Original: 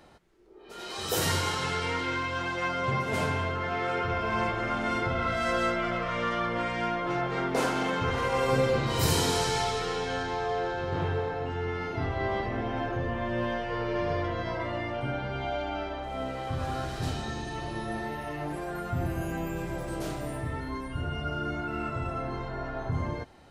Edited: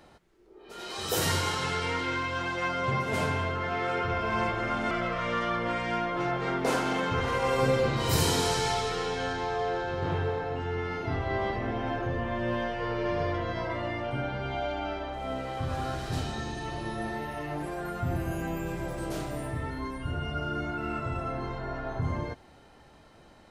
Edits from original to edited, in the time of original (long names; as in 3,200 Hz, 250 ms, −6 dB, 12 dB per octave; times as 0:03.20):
0:04.91–0:05.81: remove